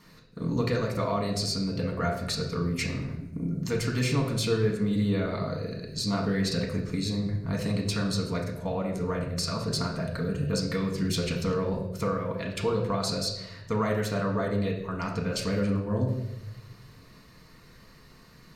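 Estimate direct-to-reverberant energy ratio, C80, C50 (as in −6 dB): −0.5 dB, 8.5 dB, 6.0 dB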